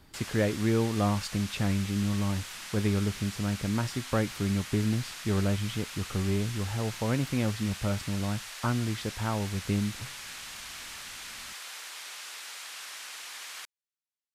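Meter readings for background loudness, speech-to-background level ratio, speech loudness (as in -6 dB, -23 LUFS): -40.0 LUFS, 9.5 dB, -30.5 LUFS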